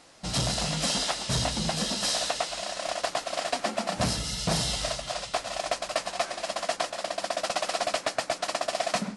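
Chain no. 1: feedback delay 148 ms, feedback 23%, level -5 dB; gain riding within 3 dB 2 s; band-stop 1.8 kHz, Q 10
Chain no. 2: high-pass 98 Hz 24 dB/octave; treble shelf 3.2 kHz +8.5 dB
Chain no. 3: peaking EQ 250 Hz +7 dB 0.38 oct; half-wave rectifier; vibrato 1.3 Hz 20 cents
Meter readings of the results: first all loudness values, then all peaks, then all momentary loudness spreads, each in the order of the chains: -27.5 LUFS, -24.5 LUFS, -33.5 LUFS; -13.0 dBFS, -8.0 dBFS, -14.0 dBFS; 4 LU, 7 LU, 5 LU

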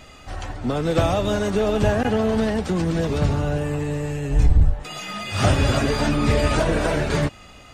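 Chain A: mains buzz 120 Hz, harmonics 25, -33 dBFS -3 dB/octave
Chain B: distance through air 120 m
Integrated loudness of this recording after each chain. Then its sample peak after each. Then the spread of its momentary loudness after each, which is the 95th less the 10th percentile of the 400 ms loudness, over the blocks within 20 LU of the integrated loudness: -21.5 LUFS, -22.0 LUFS; -6.0 dBFS, -7.5 dBFS; 8 LU, 9 LU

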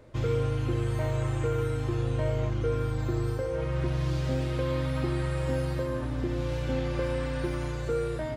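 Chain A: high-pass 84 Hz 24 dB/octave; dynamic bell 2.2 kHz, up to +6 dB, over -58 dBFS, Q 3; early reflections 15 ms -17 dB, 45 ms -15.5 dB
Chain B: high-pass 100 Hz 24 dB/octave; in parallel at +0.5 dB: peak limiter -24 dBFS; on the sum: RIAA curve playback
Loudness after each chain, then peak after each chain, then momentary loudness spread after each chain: -29.5 LUFS, -16.5 LUFS; -15.0 dBFS, -5.5 dBFS; 4 LU, 5 LU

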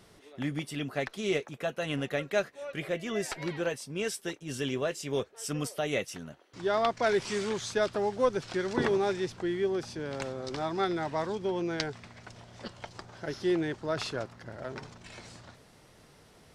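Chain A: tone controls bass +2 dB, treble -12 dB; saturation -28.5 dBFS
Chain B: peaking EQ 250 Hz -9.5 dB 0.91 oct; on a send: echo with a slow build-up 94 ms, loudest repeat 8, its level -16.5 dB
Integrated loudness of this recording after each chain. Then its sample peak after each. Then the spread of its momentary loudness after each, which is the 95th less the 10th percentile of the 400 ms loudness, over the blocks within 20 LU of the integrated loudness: -36.0 LUFS, -33.5 LUFS; -28.5 dBFS, -12.5 dBFS; 13 LU, 11 LU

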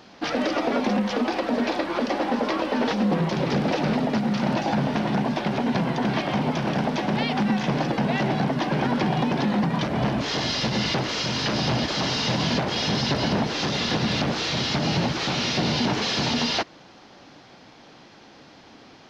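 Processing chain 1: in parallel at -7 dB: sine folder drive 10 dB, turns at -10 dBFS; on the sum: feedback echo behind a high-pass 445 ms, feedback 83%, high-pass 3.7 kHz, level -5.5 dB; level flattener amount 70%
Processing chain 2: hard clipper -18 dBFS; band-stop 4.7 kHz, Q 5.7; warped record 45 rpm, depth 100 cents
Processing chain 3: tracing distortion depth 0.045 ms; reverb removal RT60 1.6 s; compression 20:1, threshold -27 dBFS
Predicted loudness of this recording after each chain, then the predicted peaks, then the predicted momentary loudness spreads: -14.0 LUFS, -24.5 LUFS, -31.5 LUFS; -5.0 dBFS, -15.5 dBFS, -18.0 dBFS; 2 LU, 2 LU, 2 LU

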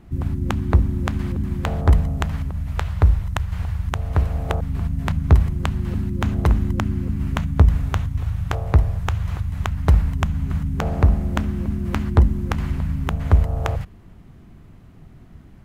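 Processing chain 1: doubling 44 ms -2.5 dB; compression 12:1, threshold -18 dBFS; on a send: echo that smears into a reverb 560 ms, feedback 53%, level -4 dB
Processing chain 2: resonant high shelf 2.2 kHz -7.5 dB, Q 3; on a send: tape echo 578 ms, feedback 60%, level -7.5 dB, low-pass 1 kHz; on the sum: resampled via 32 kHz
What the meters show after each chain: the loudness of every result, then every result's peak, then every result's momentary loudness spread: -24.0 LUFS, -21.5 LUFS; -6.0 dBFS, -1.0 dBFS; 4 LU, 8 LU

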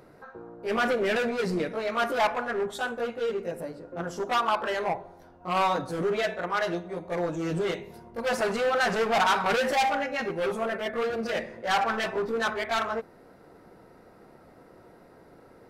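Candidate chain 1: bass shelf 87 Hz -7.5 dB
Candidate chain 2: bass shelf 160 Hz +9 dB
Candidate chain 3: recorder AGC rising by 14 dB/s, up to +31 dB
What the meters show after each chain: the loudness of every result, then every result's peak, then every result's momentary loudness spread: -28.0 LUFS, -27.0 LUFS, -28.0 LUFS; -14.5 dBFS, -14.5 dBFS, -15.0 dBFS; 11 LU, 10 LU, 12 LU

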